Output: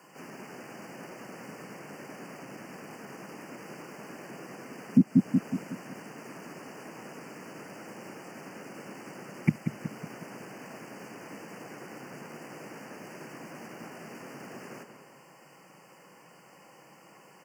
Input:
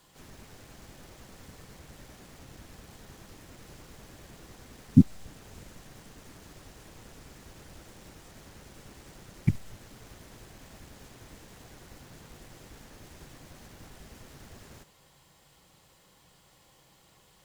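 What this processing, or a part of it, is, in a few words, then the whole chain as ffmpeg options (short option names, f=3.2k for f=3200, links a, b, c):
PA system with an anti-feedback notch: -filter_complex "[0:a]highpass=120,highpass=f=160:w=0.5412,highpass=f=160:w=1.3066,asuperstop=centerf=3700:order=12:qfactor=2.3,bass=f=250:g=-1,treble=f=4k:g=-9,asplit=2[a][b];[b]adelay=184,lowpass=f=2k:p=1,volume=-8.5dB,asplit=2[c][d];[d]adelay=184,lowpass=f=2k:p=1,volume=0.46,asplit=2[e][f];[f]adelay=184,lowpass=f=2k:p=1,volume=0.46,asplit=2[g][h];[h]adelay=184,lowpass=f=2k:p=1,volume=0.46,asplit=2[i][j];[j]adelay=184,lowpass=f=2k:p=1,volume=0.46[k];[a][c][e][g][i][k]amix=inputs=6:normalize=0,alimiter=limit=-19dB:level=0:latency=1:release=309,volume=9dB"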